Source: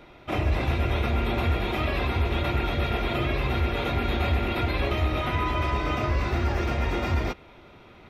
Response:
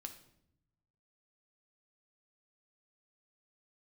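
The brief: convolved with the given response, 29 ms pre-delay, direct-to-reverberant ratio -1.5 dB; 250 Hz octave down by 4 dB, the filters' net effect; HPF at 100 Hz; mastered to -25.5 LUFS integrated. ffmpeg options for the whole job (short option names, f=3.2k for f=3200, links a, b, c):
-filter_complex "[0:a]highpass=100,equalizer=f=250:t=o:g=-5.5,asplit=2[a][b];[1:a]atrim=start_sample=2205,adelay=29[c];[b][c]afir=irnorm=-1:irlink=0,volume=6dB[d];[a][d]amix=inputs=2:normalize=0,volume=-1dB"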